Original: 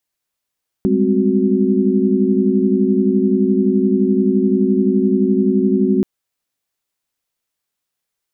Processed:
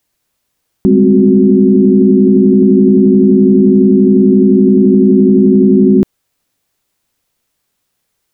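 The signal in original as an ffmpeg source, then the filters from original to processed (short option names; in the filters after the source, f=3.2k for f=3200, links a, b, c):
-f lavfi -i "aevalsrc='0.133*(sin(2*PI*196*t)+sin(2*PI*207.65*t)+sin(2*PI*261.63*t)+sin(2*PI*369.99*t))':d=5.18:s=44100"
-af "lowshelf=f=460:g=6.5,alimiter=level_in=11dB:limit=-1dB:release=50:level=0:latency=1"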